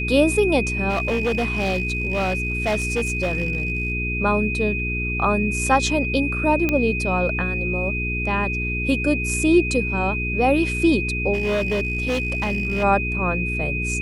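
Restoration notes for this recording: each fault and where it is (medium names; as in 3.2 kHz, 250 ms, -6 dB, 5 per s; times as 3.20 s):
hum 60 Hz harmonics 7 -27 dBFS
whine 2.5 kHz -25 dBFS
0.89–3.92 s: clipped -17.5 dBFS
6.69 s: pop -8 dBFS
11.33–12.84 s: clipped -18 dBFS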